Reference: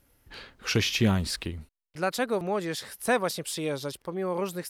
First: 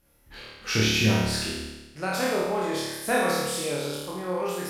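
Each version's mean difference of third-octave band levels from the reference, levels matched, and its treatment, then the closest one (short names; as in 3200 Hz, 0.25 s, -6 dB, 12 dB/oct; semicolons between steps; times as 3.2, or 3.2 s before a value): 9.0 dB: spectral trails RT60 0.45 s; on a send: flutter echo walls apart 4.7 m, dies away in 1.1 s; on the sum: gain -4 dB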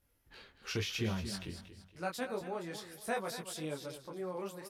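5.0 dB: on a send: feedback echo 0.233 s, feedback 34%, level -11.5 dB; on the sum: detuned doubles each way 19 cents; gain -7 dB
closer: second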